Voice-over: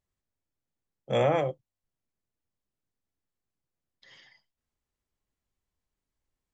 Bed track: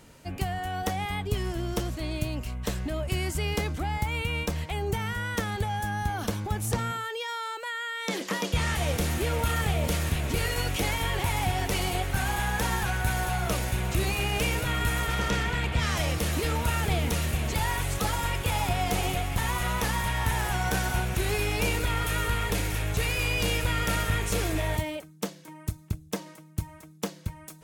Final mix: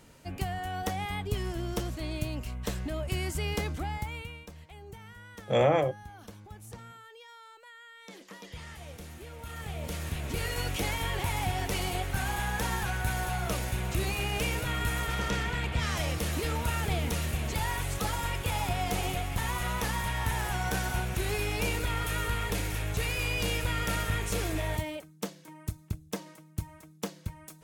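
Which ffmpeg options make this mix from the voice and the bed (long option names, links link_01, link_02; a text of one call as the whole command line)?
ffmpeg -i stem1.wav -i stem2.wav -filter_complex "[0:a]adelay=4400,volume=1dB[link_01];[1:a]volume=11dB,afade=type=out:start_time=3.77:duration=0.63:silence=0.188365,afade=type=in:start_time=9.38:duration=1.28:silence=0.199526[link_02];[link_01][link_02]amix=inputs=2:normalize=0" out.wav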